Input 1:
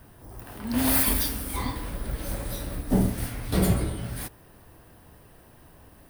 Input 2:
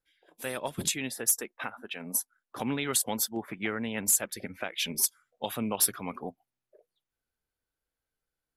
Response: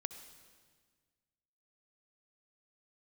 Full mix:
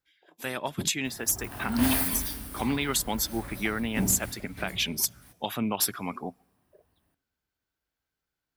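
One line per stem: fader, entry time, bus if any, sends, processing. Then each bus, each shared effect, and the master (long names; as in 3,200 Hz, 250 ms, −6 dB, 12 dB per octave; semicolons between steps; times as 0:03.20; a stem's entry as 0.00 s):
0:01.85 −0.5 dB → 0:02.05 −10 dB → 0:04.17 −10 dB → 0:04.77 −22.5 dB, 1.05 s, send −6 dB, no processing
+3.0 dB, 0.00 s, send −22.5 dB, parametric band 9,800 Hz −10 dB 0.45 octaves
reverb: on, RT60 1.6 s, pre-delay 58 ms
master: high-pass filter 45 Hz; parametric band 500 Hz −6 dB 0.44 octaves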